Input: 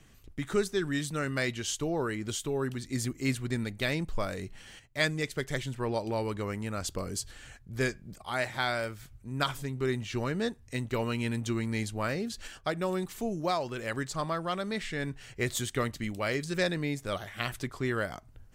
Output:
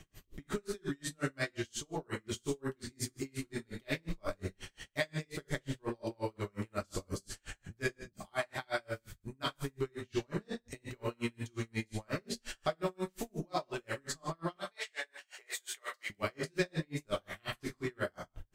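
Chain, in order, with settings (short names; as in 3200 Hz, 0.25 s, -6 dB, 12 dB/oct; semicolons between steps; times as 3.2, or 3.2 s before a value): 14.56–16.1 HPF 630 Hz 24 dB/oct; compressor 2:1, threshold -41 dBFS, peak gain reduction 10.5 dB; 0.96–1.48 brick-wall FIR low-pass 14000 Hz; non-linear reverb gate 0.22 s falling, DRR -1.5 dB; dB-linear tremolo 5.6 Hz, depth 39 dB; gain +4 dB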